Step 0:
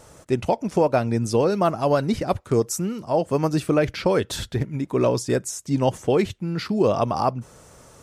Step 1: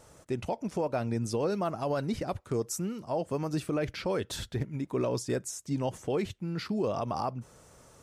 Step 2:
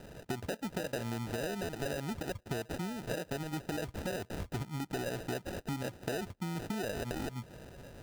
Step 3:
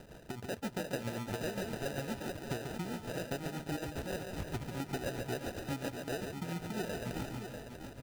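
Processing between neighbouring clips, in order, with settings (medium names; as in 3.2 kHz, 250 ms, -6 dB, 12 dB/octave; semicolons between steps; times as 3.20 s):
peak limiter -14 dBFS, peak gain reduction 5.5 dB; trim -7.5 dB
compression 10:1, threshold -40 dBFS, peak gain reduction 14.5 dB; sample-and-hold 40×; trim +6 dB
rattle on loud lows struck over -38 dBFS, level -44 dBFS; tremolo 7.5 Hz, depth 62%; on a send: multi-tap echo 141/349/643 ms -6/-12/-7.5 dB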